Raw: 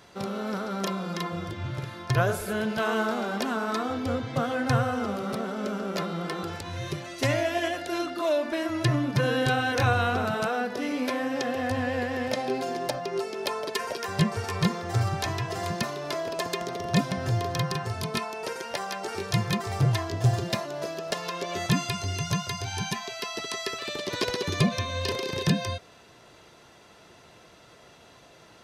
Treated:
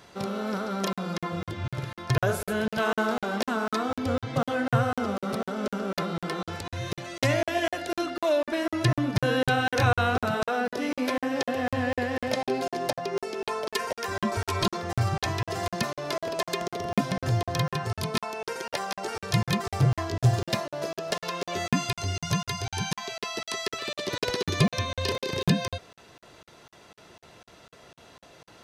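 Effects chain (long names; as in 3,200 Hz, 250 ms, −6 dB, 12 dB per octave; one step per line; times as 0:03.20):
0:14.11–0:14.77: comb filter 3.1 ms, depth 89%
regular buffer underruns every 0.25 s, samples 2,048, zero, from 0:00.93
level +1 dB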